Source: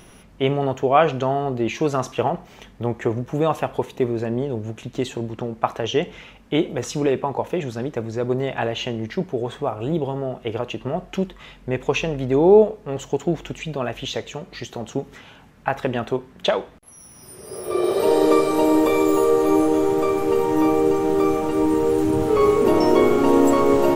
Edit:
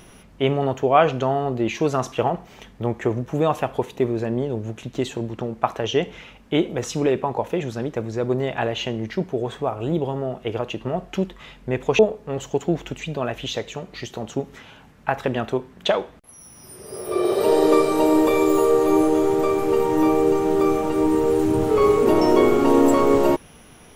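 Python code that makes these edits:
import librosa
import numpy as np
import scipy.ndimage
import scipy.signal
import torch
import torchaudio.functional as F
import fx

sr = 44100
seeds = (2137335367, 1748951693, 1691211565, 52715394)

y = fx.edit(x, sr, fx.cut(start_s=11.99, length_s=0.59), tone=tone)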